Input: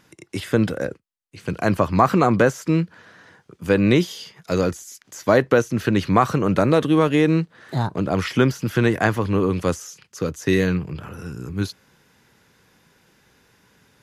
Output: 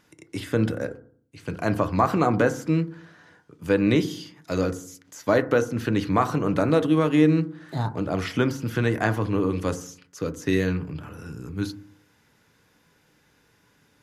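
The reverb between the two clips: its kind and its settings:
feedback delay network reverb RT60 0.53 s, low-frequency decay 1.35×, high-frequency decay 0.25×, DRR 9.5 dB
level −5 dB

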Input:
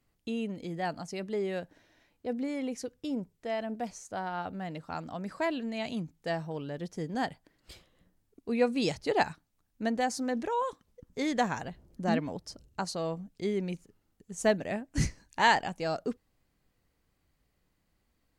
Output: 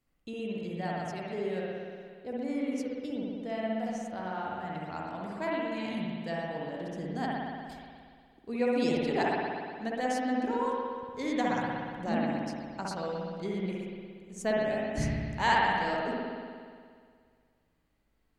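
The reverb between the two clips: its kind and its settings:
spring reverb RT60 2 s, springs 59 ms, chirp 70 ms, DRR −4.5 dB
level −5.5 dB

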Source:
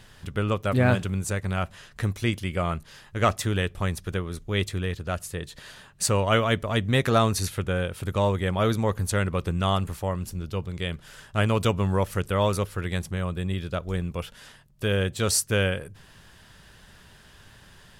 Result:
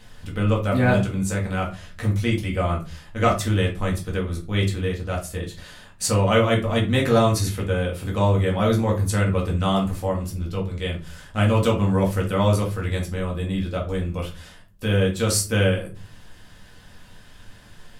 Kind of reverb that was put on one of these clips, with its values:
rectangular room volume 170 cubic metres, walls furnished, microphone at 2 metres
level −2 dB

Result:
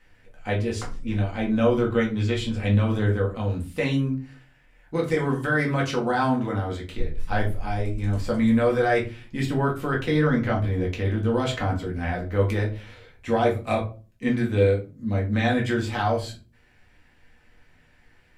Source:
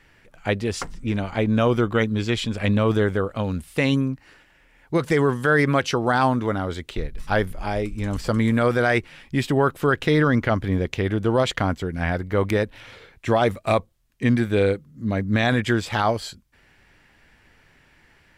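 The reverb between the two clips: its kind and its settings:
rectangular room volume 160 cubic metres, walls furnished, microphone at 2 metres
level −8.5 dB

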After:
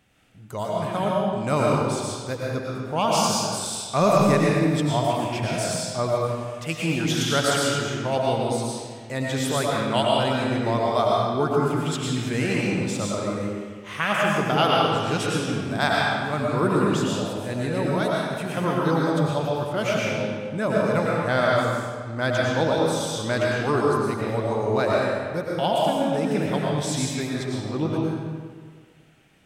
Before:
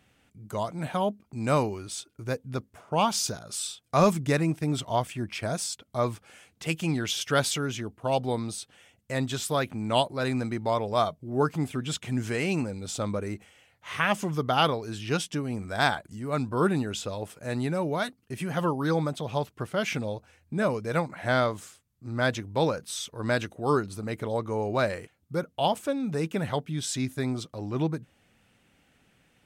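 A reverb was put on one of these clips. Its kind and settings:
comb and all-pass reverb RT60 1.7 s, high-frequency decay 0.8×, pre-delay 70 ms, DRR −4 dB

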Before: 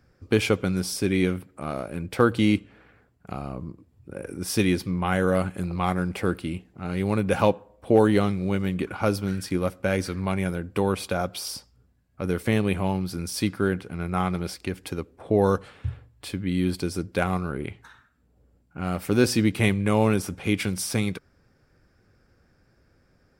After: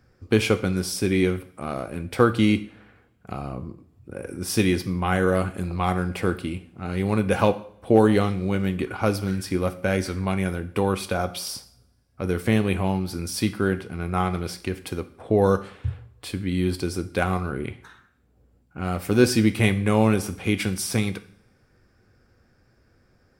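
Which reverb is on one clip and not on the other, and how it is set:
coupled-rooms reverb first 0.51 s, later 1.7 s, from −26 dB, DRR 9.5 dB
level +1 dB

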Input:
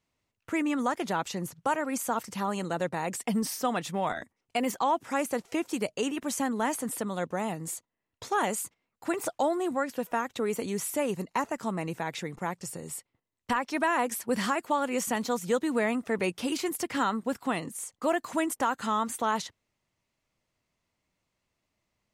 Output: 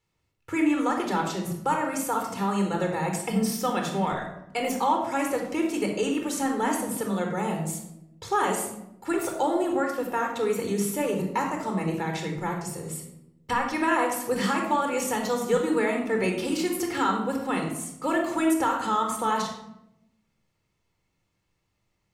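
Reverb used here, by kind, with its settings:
rectangular room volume 2,400 cubic metres, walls furnished, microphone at 4.2 metres
level −1 dB

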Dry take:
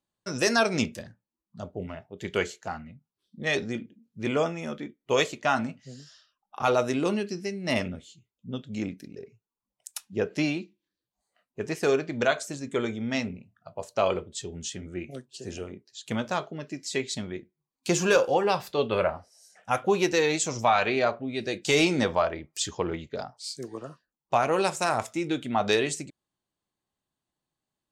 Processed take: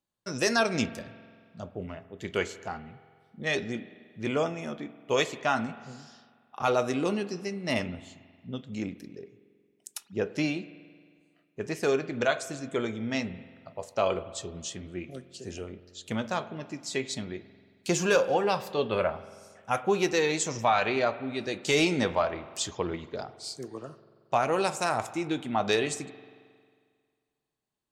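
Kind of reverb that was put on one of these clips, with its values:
spring reverb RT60 1.9 s, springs 45 ms, chirp 70 ms, DRR 14.5 dB
level −2 dB

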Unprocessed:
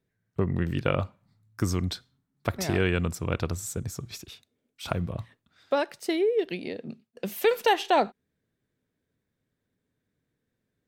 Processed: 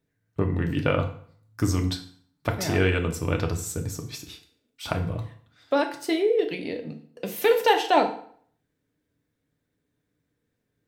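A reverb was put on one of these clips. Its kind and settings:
feedback delay network reverb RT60 0.56 s, low-frequency decay 1×, high-frequency decay 0.85×, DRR 3.5 dB
level +1 dB

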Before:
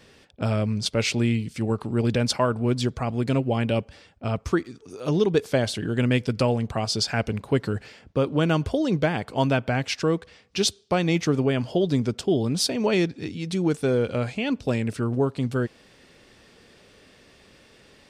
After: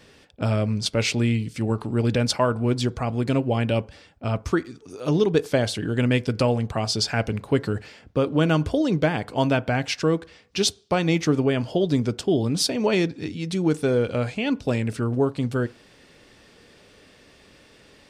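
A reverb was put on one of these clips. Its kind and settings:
feedback delay network reverb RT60 0.37 s, low-frequency decay 0.8×, high-frequency decay 0.35×, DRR 16 dB
level +1 dB

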